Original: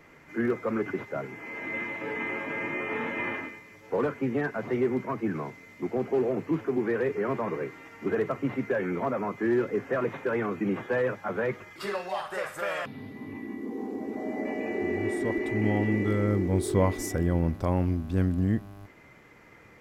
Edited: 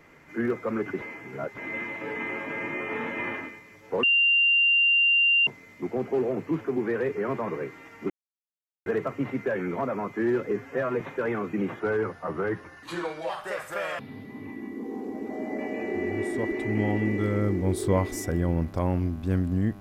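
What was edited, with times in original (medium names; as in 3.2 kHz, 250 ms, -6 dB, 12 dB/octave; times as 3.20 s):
1.02–1.58 s: reverse
4.03–5.47 s: bleep 2.78 kHz -17.5 dBFS
8.10 s: insert silence 0.76 s
9.75–10.08 s: stretch 1.5×
10.87–12.16 s: speed 86%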